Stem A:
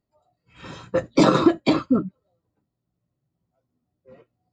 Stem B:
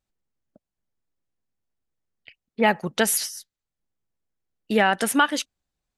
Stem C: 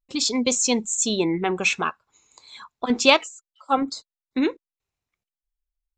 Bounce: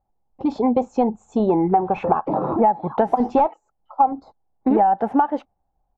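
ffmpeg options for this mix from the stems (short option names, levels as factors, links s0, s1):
-filter_complex "[0:a]aeval=exprs='val(0)*gte(abs(val(0)),0.00794)':c=same,alimiter=limit=0.141:level=0:latency=1:release=79,adelay=1100,volume=0.841[s0];[1:a]acontrast=69,volume=0.75,asplit=2[s1][s2];[2:a]aeval=exprs='0.794*(cos(1*acos(clip(val(0)/0.794,-1,1)))-cos(1*PI/2))+0.316*(cos(5*acos(clip(val(0)/0.794,-1,1)))-cos(5*PI/2))':c=same,adelay=300,volume=0.631[s3];[s2]apad=whole_len=248262[s4];[s0][s4]sidechaincompress=threshold=0.0224:ratio=4:attack=47:release=657[s5];[s5][s1][s3]amix=inputs=3:normalize=0,lowpass=f=810:t=q:w=7.5,lowshelf=f=150:g=6.5,acompressor=threshold=0.2:ratio=8"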